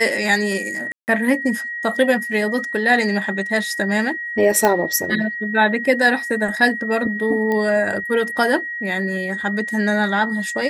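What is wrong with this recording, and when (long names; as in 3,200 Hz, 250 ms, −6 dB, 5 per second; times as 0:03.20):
whistle 1,900 Hz −25 dBFS
0:00.92–0:01.08: drop-out 159 ms
0:04.65: click −3 dBFS
0:07.52: click −12 dBFS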